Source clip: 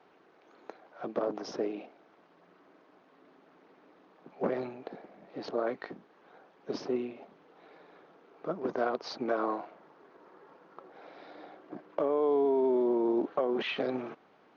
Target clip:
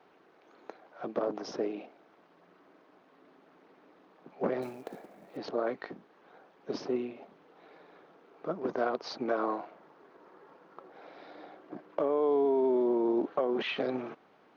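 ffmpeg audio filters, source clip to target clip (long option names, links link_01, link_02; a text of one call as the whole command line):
ffmpeg -i in.wav -filter_complex "[0:a]asettb=1/sr,asplit=3[link_01][link_02][link_03];[link_01]atrim=end=4.624[link_04];[link_02]atrim=start=4.62:end=5.37,asetpts=PTS-STARTPTS,afade=type=in:duration=0.004:curve=qsin,afade=type=out:start_time=0.746:duration=0.004:curve=qsin,acrusher=bits=5:mode=log:mix=0:aa=0.000001[link_05];[link_03]atrim=start=5.366[link_06];[link_04][link_05]acrossfade=duration=0.004:curve1=hsin:curve2=qsin[link_07];[link_07][link_06]acrossfade=duration=0.004:curve1=qsin:curve2=hsin" out.wav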